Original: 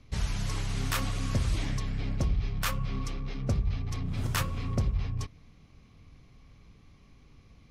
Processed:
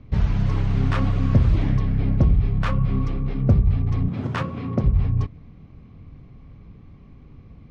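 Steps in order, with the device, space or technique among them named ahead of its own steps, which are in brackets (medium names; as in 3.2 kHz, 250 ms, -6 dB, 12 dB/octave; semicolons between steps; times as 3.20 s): phone in a pocket (low-pass 3.8 kHz 12 dB/octave; peaking EQ 150 Hz +5 dB 2.7 oct; treble shelf 2 kHz -12 dB); 4.08–4.84 s: high-pass 180 Hz 12 dB/octave; trim +8 dB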